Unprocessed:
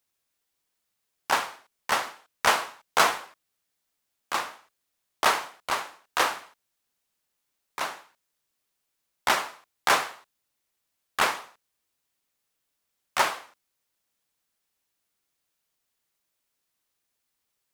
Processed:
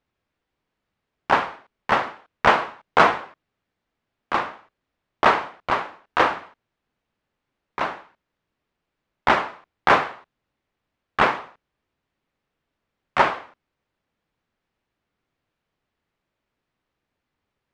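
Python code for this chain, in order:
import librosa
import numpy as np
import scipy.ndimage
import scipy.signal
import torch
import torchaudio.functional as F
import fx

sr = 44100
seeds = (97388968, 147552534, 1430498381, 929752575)

y = scipy.signal.sosfilt(scipy.signal.butter(2, 2500.0, 'lowpass', fs=sr, output='sos'), x)
y = fx.low_shelf(y, sr, hz=420.0, db=9.0)
y = y * 10.0 ** (5.0 / 20.0)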